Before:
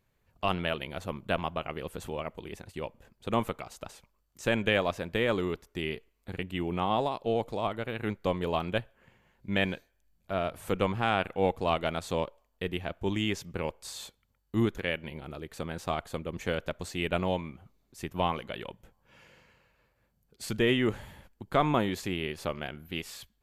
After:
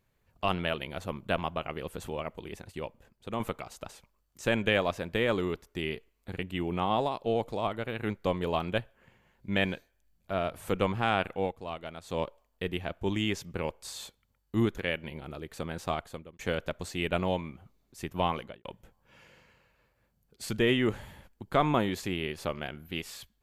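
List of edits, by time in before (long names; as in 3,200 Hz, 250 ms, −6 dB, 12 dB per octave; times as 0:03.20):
0:02.72–0:03.40: fade out, to −7 dB
0:11.33–0:12.23: duck −10.5 dB, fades 0.20 s
0:15.92–0:16.39: fade out
0:18.39–0:18.65: fade out and dull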